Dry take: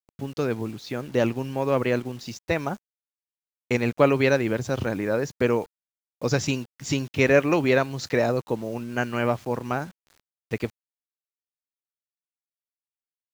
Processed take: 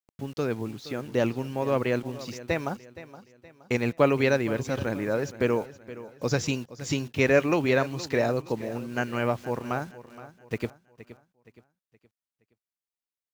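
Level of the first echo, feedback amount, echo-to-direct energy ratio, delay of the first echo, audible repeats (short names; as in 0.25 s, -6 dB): -16.0 dB, 40%, -15.5 dB, 0.47 s, 3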